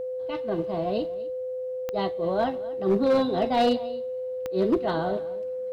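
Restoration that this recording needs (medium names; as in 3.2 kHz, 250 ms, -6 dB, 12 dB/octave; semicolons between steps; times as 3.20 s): clip repair -16 dBFS; de-click; band-stop 510 Hz, Q 30; inverse comb 246 ms -19 dB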